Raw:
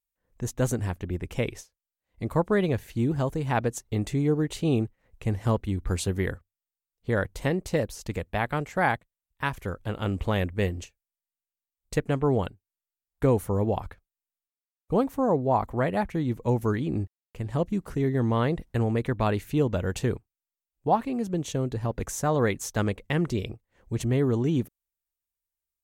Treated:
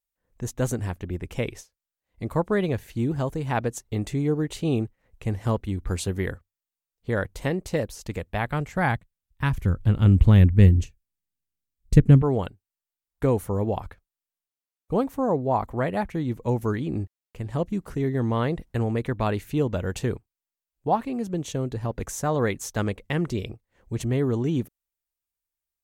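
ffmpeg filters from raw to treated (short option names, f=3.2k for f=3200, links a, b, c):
-filter_complex "[0:a]asettb=1/sr,asplit=3[a][b][c];[a]atrim=end=8.254[d];[b]atrim=start=8.25:end=12.22,asetpts=PTS-STARTPTS,afade=t=in:d=0.004:c=qsin,afade=t=out:st=3.966:d=0.004:c=qsin,asubboost=boost=10.5:cutoff=230[e];[c]atrim=start=12.216[f];[d][e]acrossfade=d=0.004:c1=hsin:c2=qsin[g];[g][f]acrossfade=d=0.004:c1=qsin:c2=hsin"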